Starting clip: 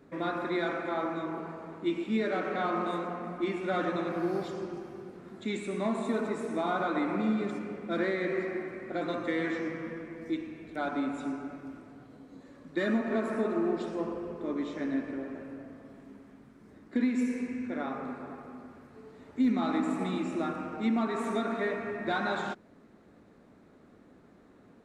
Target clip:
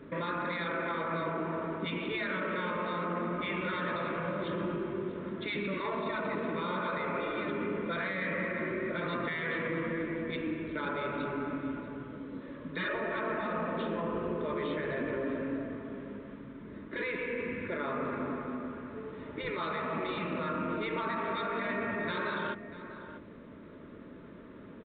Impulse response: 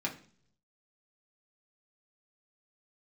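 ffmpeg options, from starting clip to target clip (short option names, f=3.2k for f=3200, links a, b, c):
-filter_complex "[0:a]afftfilt=real='re*lt(hypot(re,im),0.126)':imag='im*lt(hypot(re,im),0.126)':win_size=1024:overlap=0.75,alimiter=level_in=9.5dB:limit=-24dB:level=0:latency=1:release=30,volume=-9.5dB,asuperstop=centerf=760:order=8:qfactor=4.7,asplit=2[a][b];[b]adelay=641.4,volume=-12dB,highshelf=f=4k:g=-14.4[c];[a][c]amix=inputs=2:normalize=0,volume=8dB" -ar 8000 -c:a pcm_alaw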